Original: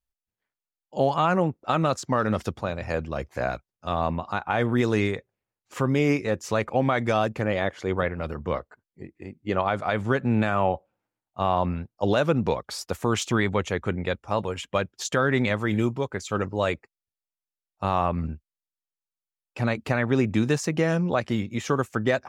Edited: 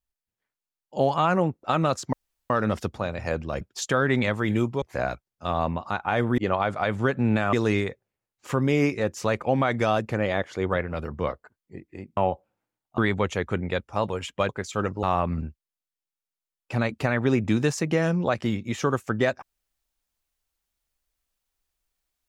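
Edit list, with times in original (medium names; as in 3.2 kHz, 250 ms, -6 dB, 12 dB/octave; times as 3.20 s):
2.13 s: insert room tone 0.37 s
9.44–10.59 s: move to 4.80 s
11.40–13.33 s: delete
14.84–16.05 s: move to 3.24 s
16.59–17.89 s: delete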